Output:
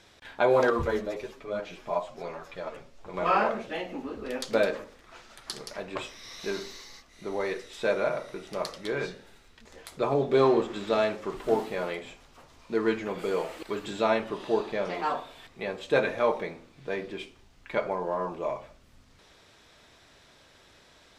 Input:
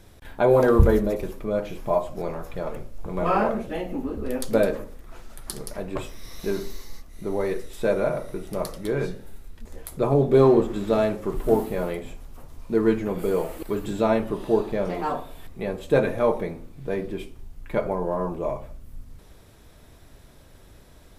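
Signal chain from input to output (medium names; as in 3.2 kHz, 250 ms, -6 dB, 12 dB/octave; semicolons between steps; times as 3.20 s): tilt EQ +4 dB/octave; 0.70–3.14 s: chorus voices 4, 1.2 Hz, delay 10 ms, depth 3 ms; distance through air 150 m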